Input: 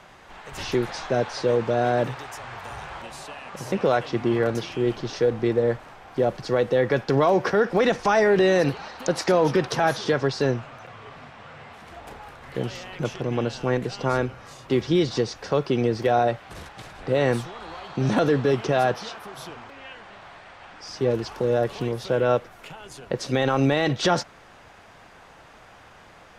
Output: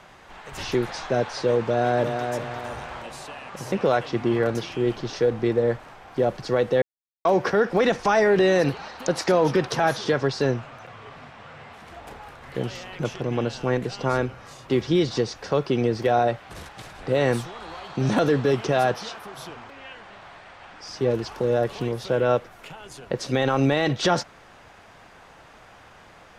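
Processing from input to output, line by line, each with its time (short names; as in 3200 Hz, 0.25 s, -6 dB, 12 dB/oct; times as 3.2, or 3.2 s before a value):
1.65–2.32 echo throw 0.35 s, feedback 40%, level -6 dB
6.82–7.25 mute
16.56–19.21 high shelf 6100 Hz +4 dB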